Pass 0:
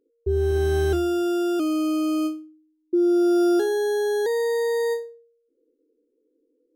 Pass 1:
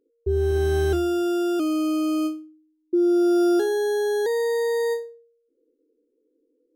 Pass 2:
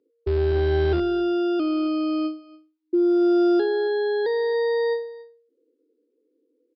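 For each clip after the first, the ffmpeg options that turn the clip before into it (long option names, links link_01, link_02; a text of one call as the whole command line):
ffmpeg -i in.wav -af anull out.wav
ffmpeg -i in.wav -filter_complex "[0:a]aecho=1:1:281:0.1,acrossover=split=120|2000[link_01][link_02][link_03];[link_01]acrusher=bits=6:dc=4:mix=0:aa=0.000001[link_04];[link_04][link_02][link_03]amix=inputs=3:normalize=0,aresample=11025,aresample=44100" out.wav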